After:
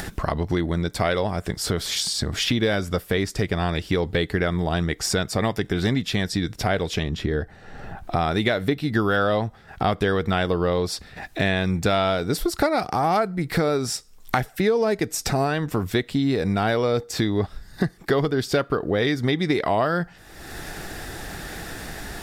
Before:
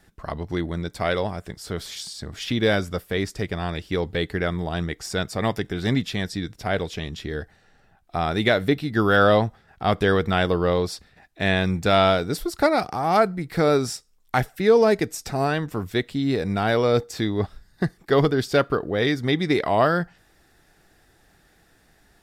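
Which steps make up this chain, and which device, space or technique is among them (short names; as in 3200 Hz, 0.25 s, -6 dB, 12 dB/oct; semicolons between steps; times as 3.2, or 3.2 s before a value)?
7.03–8.16 high shelf 2200 Hz -10 dB; upward and downward compression (upward compressor, threshold -24 dBFS; compressor 6:1, threshold -24 dBFS, peak gain reduction 12 dB); gain +6 dB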